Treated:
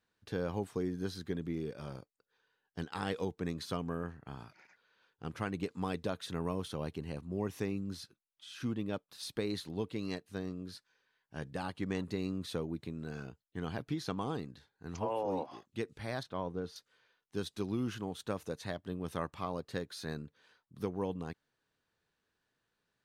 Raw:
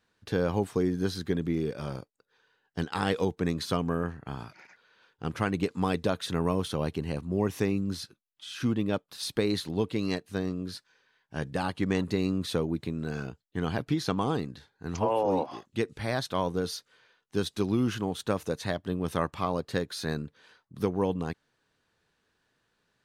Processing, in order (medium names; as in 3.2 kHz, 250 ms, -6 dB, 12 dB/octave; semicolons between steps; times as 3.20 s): 16.23–16.76 s: low-pass 1.6 kHz 6 dB/octave; trim -8.5 dB